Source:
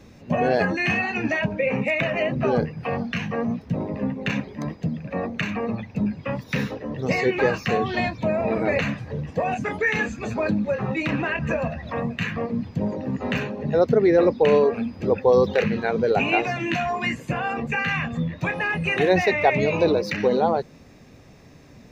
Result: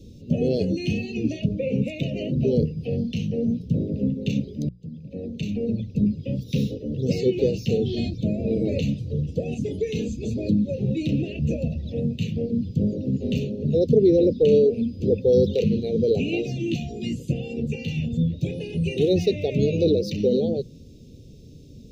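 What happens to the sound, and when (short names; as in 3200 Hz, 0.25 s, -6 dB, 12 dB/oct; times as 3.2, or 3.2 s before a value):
4.69–5.62 fade in
whole clip: elliptic band-stop 480–3200 Hz, stop band 70 dB; low shelf 180 Hz +8.5 dB; notches 60/120/180 Hz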